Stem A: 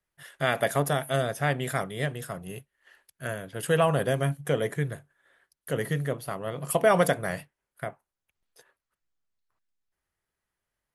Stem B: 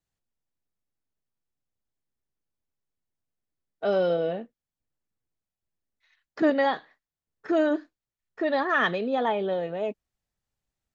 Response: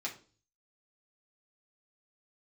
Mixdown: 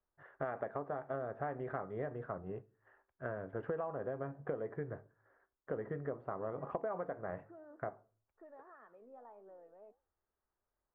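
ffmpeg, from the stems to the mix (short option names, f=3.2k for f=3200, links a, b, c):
-filter_complex "[0:a]volume=-2dB,asplit=2[a][b];[b]volume=-12.5dB[c];[1:a]lowshelf=f=440:g=-9.5,acompressor=threshold=-28dB:ratio=6,flanger=delay=8.8:depth=8.6:regen=82:speed=1.7:shape=triangular,volume=-18.5dB[d];[2:a]atrim=start_sample=2205[e];[c][e]afir=irnorm=-1:irlink=0[f];[a][d][f]amix=inputs=3:normalize=0,lowpass=f=1.3k:w=0.5412,lowpass=f=1.3k:w=1.3066,equalizer=f=150:w=2.2:g=-11.5,acompressor=threshold=-35dB:ratio=20"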